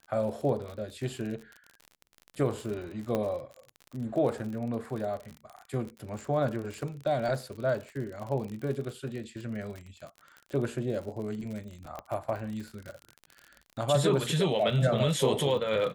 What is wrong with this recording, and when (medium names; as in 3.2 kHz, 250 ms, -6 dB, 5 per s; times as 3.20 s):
crackle 47 per s -36 dBFS
3.15 s: pop -17 dBFS
11.99 s: pop -24 dBFS